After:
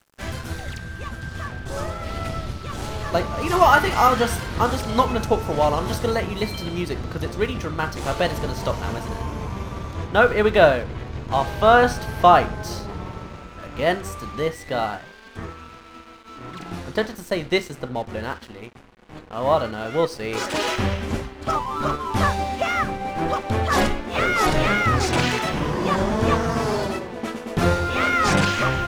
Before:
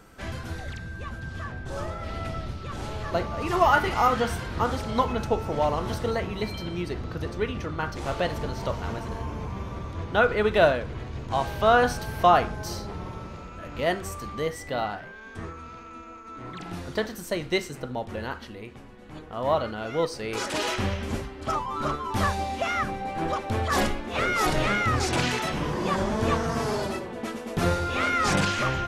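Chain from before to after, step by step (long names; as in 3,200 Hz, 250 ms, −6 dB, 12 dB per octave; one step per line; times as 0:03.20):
high-shelf EQ 6,000 Hz +6.5 dB, from 0:10.07 −4.5 dB
dead-zone distortion −46 dBFS
level +5.5 dB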